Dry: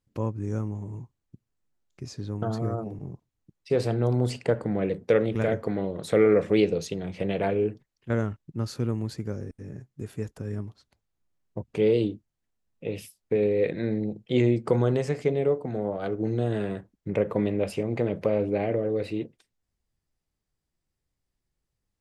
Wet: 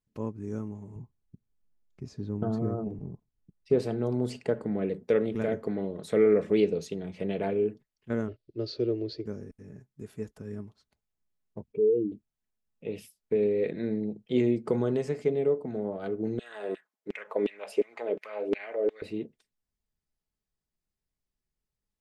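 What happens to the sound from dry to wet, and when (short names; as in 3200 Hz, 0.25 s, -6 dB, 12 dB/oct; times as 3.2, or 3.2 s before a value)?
0.96–3.79 tilt -2 dB/oct
8.28–9.26 EQ curve 120 Hz 0 dB, 180 Hz -22 dB, 330 Hz +9 dB, 620 Hz +8 dB, 890 Hz -12 dB, 1900 Hz -3 dB, 2700 Hz +3 dB, 4600 Hz +10 dB, 8900 Hz -30 dB
11.72–12.12 spectral contrast raised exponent 2.2
16.39–19.02 LFO high-pass saw down 2.8 Hz 330–2700 Hz
whole clip: comb 4.7 ms, depth 32%; dynamic EQ 310 Hz, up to +6 dB, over -37 dBFS, Q 1.3; gain -7 dB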